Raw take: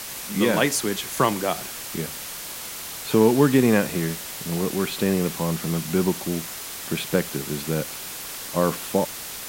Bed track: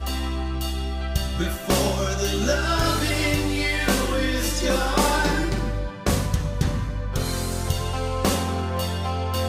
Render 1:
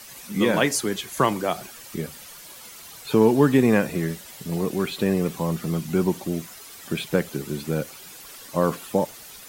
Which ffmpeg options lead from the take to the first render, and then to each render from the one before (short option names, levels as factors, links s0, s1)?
-af "afftdn=nr=11:nf=-35"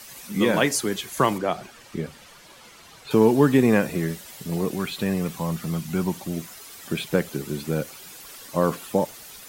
-filter_complex "[0:a]asettb=1/sr,asplit=3[s0][s1][s2];[s0]atrim=end=1.384[s3];[s1]atrim=start=1.38:end=3.11,asetpts=PTS-STARTPTS,afade=t=in:d=0.004:c=qsin,afade=t=out:st=1.726:d=0.004:c=qsin,aemphasis=mode=reproduction:type=50fm[s4];[s2]atrim=start=3.106[s5];[s3][s4]acrossfade=d=0.004:c1=hsin:c2=qsin[s6];[s6][s5]acrossfade=d=0.004:c1=qsin:c2=hsin,asettb=1/sr,asplit=3[s7][s8][s9];[s7]atrim=end=4.754[s10];[s8]atrim=start=4.75:end=6.37,asetpts=PTS-STARTPTS,afade=t=in:d=0.004:c=qsin,afade=t=out:st=1.616:d=0.004:c=qsin,equalizer=f=380:t=o:w=1.1:g=-6.5[s11];[s9]atrim=start=6.366[s12];[s10][s11]acrossfade=d=0.004:c1=hsin:c2=qsin[s13];[s13][s12]acrossfade=d=0.004:c1=qsin:c2=hsin"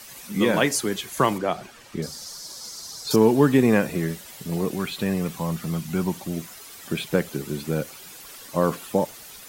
-filter_complex "[0:a]asettb=1/sr,asplit=3[s0][s1][s2];[s0]atrim=end=2.024[s3];[s1]atrim=start=2.02:end=3.16,asetpts=PTS-STARTPTS,afade=t=in:d=0.004:c=qsin,afade=t=out:st=1.136:d=0.004:c=qsin,highshelf=f=3700:t=q:w=3:g=11[s4];[s2]atrim=start=3.156[s5];[s3][s4]acrossfade=d=0.004:c1=hsin:c2=qsin[s6];[s6][s5]acrossfade=d=0.004:c1=qsin:c2=hsin"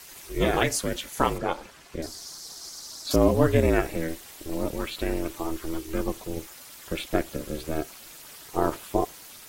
-af "aeval=exprs='val(0)*sin(2*PI*160*n/s)':c=same"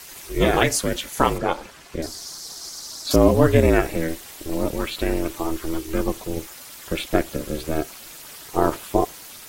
-af "volume=1.78,alimiter=limit=0.794:level=0:latency=1"